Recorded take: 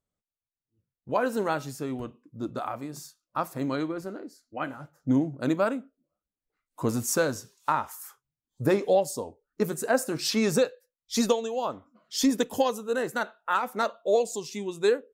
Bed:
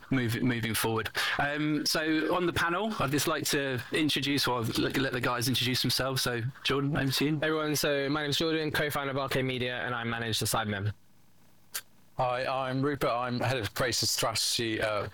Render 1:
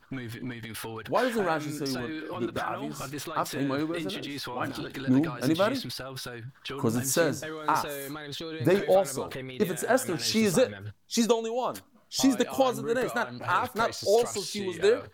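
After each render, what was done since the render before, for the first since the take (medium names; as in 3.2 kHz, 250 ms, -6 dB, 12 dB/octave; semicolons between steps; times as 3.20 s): add bed -8.5 dB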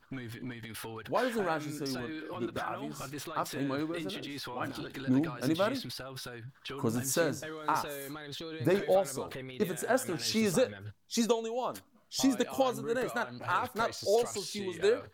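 trim -4.5 dB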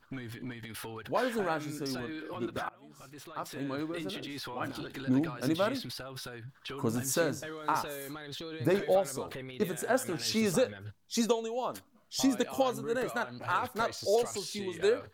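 2.69–4.08 s: fade in, from -23.5 dB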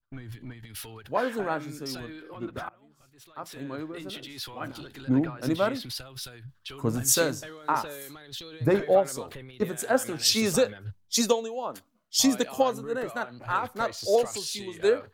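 in parallel at -0.5 dB: compression, threshold -37 dBFS, peak gain reduction 14.5 dB; on the sum: three bands expanded up and down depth 100%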